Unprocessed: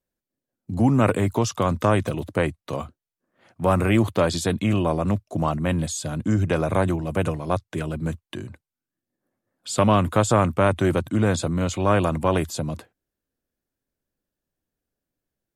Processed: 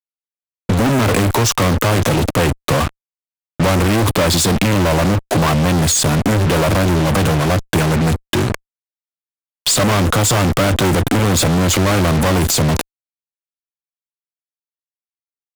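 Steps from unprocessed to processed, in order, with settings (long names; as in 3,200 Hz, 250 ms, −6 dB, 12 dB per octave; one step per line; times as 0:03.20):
fuzz pedal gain 46 dB, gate −39 dBFS
transient designer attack +3 dB, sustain +7 dB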